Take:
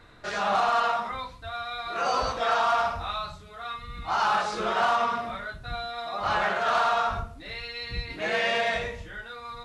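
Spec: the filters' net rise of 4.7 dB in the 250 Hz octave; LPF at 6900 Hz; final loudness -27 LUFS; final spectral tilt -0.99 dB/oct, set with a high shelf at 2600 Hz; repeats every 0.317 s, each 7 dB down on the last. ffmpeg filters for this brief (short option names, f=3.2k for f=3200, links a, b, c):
-af "lowpass=6.9k,equalizer=f=250:t=o:g=6,highshelf=f=2.6k:g=4.5,aecho=1:1:317|634|951|1268|1585:0.447|0.201|0.0905|0.0407|0.0183,volume=-1.5dB"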